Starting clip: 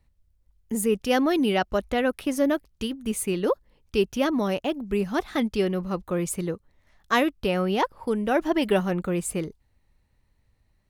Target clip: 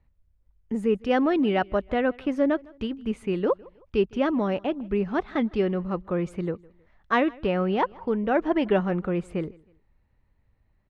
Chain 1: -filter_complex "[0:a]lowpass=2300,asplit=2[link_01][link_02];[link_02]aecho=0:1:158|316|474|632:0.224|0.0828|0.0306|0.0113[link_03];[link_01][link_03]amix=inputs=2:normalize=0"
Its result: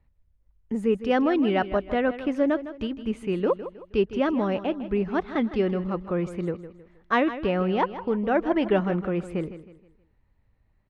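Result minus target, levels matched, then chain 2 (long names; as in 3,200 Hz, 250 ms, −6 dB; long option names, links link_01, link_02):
echo-to-direct +11.5 dB
-filter_complex "[0:a]lowpass=2300,asplit=2[link_01][link_02];[link_02]aecho=0:1:158|316:0.0596|0.022[link_03];[link_01][link_03]amix=inputs=2:normalize=0"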